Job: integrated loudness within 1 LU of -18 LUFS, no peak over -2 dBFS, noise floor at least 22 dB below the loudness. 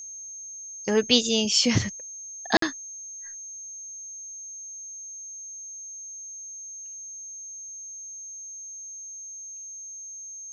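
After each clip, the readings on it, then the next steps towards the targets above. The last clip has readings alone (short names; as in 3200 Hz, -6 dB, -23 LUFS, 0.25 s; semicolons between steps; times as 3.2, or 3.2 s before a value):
dropouts 1; longest dropout 53 ms; steady tone 6400 Hz; tone level -37 dBFS; loudness -29.5 LUFS; peak -5.0 dBFS; loudness target -18.0 LUFS
-> interpolate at 2.57, 53 ms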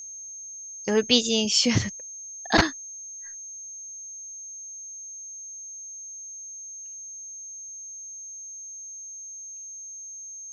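dropouts 0; steady tone 6400 Hz; tone level -37 dBFS
-> notch 6400 Hz, Q 30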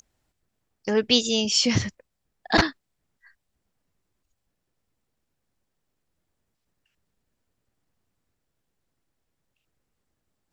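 steady tone none; loudness -22.5 LUFS; peak -5.5 dBFS; loudness target -18.0 LUFS
-> gain +4.5 dB; limiter -2 dBFS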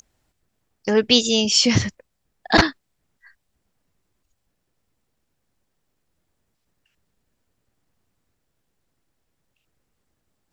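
loudness -18.0 LUFS; peak -2.0 dBFS; noise floor -75 dBFS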